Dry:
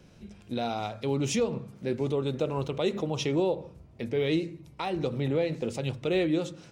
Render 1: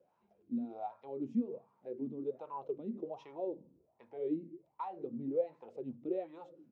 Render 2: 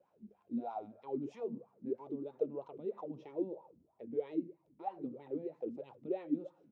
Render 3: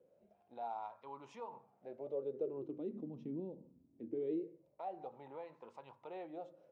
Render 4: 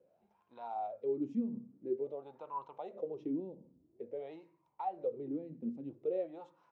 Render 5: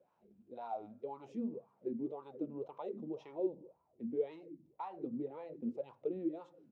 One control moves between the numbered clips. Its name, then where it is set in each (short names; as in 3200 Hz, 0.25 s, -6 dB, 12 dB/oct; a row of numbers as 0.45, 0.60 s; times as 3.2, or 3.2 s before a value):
wah, rate: 1.3, 3.1, 0.22, 0.49, 1.9 Hz